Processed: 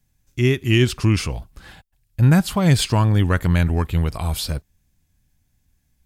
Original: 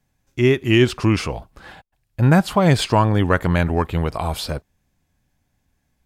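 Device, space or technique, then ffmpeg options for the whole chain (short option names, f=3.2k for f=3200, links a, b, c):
smiley-face EQ: -af "lowshelf=f=110:g=6.5,equalizer=f=690:t=o:w=2.5:g=-7.5,highshelf=f=6.6k:g=7"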